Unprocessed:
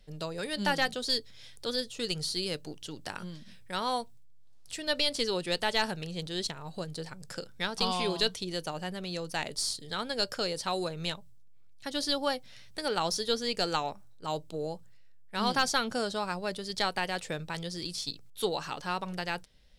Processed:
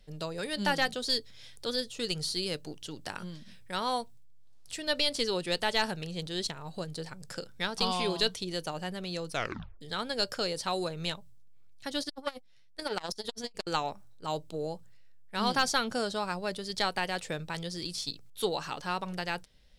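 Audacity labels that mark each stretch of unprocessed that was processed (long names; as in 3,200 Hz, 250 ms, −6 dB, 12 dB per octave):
9.290000	9.290000	tape stop 0.52 s
12.010000	13.670000	saturating transformer saturates under 1,000 Hz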